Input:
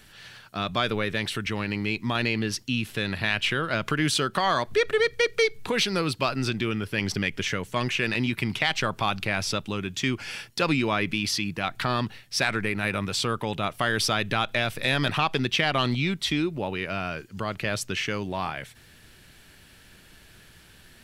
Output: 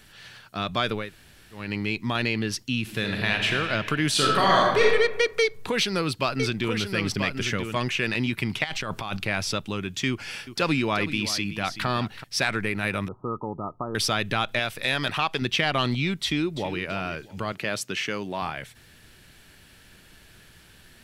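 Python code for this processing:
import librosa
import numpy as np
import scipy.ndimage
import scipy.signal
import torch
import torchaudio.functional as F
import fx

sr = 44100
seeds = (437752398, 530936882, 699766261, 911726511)

y = fx.reverb_throw(x, sr, start_s=2.81, length_s=0.7, rt60_s=2.8, drr_db=2.0)
y = fx.reverb_throw(y, sr, start_s=4.11, length_s=0.71, rt60_s=1.1, drr_db=-3.5)
y = fx.echo_single(y, sr, ms=985, db=-6.5, at=(5.41, 7.76))
y = fx.over_compress(y, sr, threshold_db=-31.0, ratio=-1.0, at=(8.64, 9.17))
y = fx.echo_single(y, sr, ms=379, db=-12.5, at=(10.09, 12.24))
y = fx.cheby_ripple(y, sr, hz=1300.0, ripple_db=6, at=(13.08, 13.95))
y = fx.low_shelf(y, sr, hz=380.0, db=-6.5, at=(14.59, 15.42))
y = fx.echo_throw(y, sr, start_s=16.23, length_s=0.59, ms=330, feedback_pct=30, wet_db=-12.5)
y = fx.highpass(y, sr, hz=160.0, slope=12, at=(17.52, 18.42))
y = fx.edit(y, sr, fx.room_tone_fill(start_s=1.03, length_s=0.59, crossfade_s=0.24), tone=tone)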